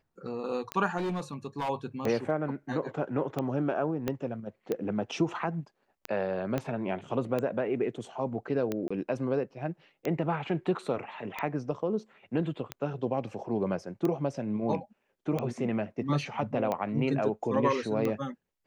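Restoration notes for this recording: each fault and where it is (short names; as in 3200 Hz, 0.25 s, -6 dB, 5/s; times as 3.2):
tick 45 rpm -18 dBFS
0.97–1.7 clipped -28.5 dBFS
4.08 pop -16 dBFS
6.58 pop -17 dBFS
8.88–8.9 gap 25 ms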